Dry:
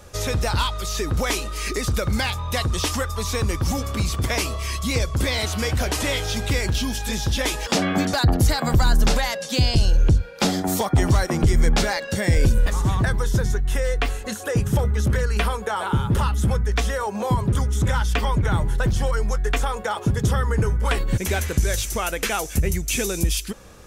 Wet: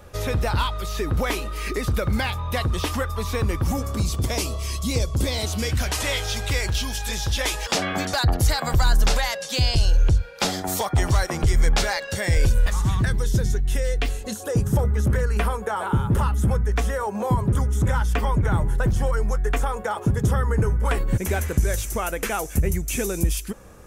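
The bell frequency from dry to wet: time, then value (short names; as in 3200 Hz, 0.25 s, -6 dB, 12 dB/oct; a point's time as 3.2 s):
bell -9 dB 1.5 oct
3.55 s 6600 Hz
4.13 s 1700 Hz
5.54 s 1700 Hz
5.99 s 230 Hz
12.56 s 230 Hz
13.21 s 1100 Hz
14.06 s 1100 Hz
14.93 s 4000 Hz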